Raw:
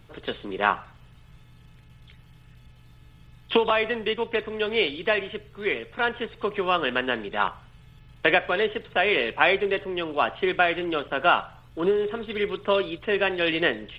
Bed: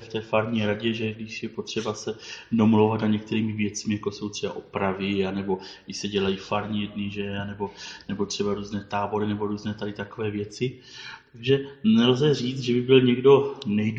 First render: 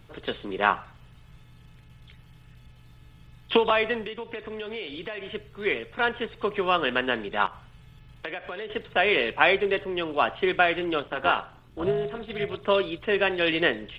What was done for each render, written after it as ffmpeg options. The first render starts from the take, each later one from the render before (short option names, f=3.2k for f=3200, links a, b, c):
-filter_complex "[0:a]asettb=1/sr,asplit=3[a][b][c];[a]atrim=end=4.044[d];[b]atrim=start=4.04:end=5.34,asetpts=PTS-STARTPTS,afade=t=in:d=0.004:c=qsin,afade=t=out:st=1.296:d=0.004:c=qsin,acompressor=threshold=-32dB:ratio=5:attack=3.2:release=140:knee=1:detection=peak[e];[c]atrim=start=5.336[f];[d][e]acrossfade=d=0.004:c1=hsin:c2=qsin[g];[g][f]acrossfade=d=0.004:c1=qsin:c2=hsin,asettb=1/sr,asplit=3[h][i][j];[h]atrim=end=7.464[k];[i]atrim=start=7.46:end=8.7,asetpts=PTS-STARTPTS,afade=t=in:d=0.004:c=qsin,afade=t=out:st=1.236:d=0.004:c=qsin,acompressor=threshold=-33dB:ratio=4:attack=3.2:release=140:knee=1:detection=peak[l];[j]atrim=start=8.696[m];[k][l]acrossfade=d=0.004:c1=hsin:c2=qsin[n];[n][m]acrossfade=d=0.004:c1=qsin:c2=hsin,asettb=1/sr,asplit=3[o][p][q];[o]atrim=end=11.004[r];[p]atrim=start=11:end=12.63,asetpts=PTS-STARTPTS,afade=t=in:d=0.004:c=qsin,afade=t=out:st=1.626:d=0.004:c=qsin,tremolo=f=260:d=0.71[s];[q]atrim=start=12.626[t];[r][s]acrossfade=d=0.004:c1=hsin:c2=qsin[u];[u][t]acrossfade=d=0.004:c1=qsin:c2=hsin"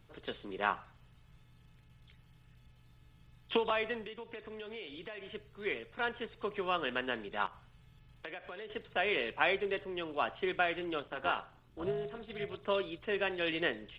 -af "volume=-10dB"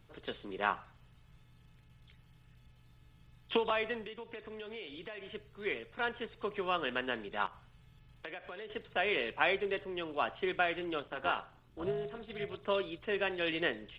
-af anull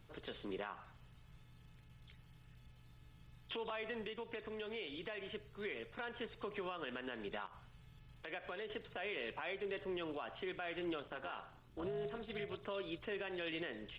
-af "acompressor=threshold=-34dB:ratio=4,alimiter=level_in=9dB:limit=-24dB:level=0:latency=1:release=81,volume=-9dB"